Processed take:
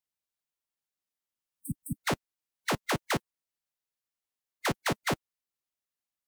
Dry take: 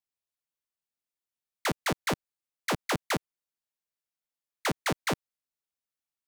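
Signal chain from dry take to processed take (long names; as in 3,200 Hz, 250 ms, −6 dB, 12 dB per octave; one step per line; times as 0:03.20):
phase-vocoder pitch shift with formants kept −1.5 semitones
healed spectral selection 0:01.38–0:01.94, 300–7,900 Hz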